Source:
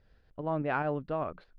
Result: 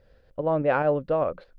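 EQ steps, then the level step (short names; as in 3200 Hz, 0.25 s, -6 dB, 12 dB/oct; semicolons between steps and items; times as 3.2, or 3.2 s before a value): bell 530 Hz +13.5 dB 0.34 oct; +4.5 dB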